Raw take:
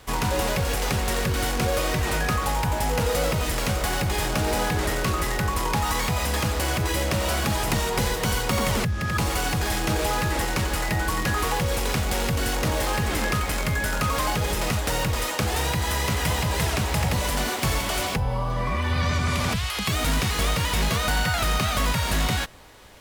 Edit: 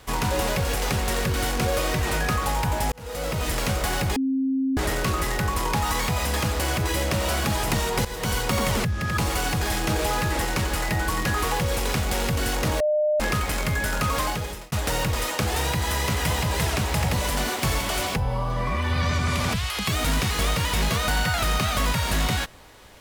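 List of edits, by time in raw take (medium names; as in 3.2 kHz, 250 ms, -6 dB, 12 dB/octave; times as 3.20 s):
2.92–3.50 s: fade in
4.16–4.77 s: bleep 266 Hz -20.5 dBFS
8.05–8.44 s: fade in equal-power, from -13.5 dB
12.80–13.20 s: bleep 605 Hz -18.5 dBFS
14.20–14.72 s: fade out linear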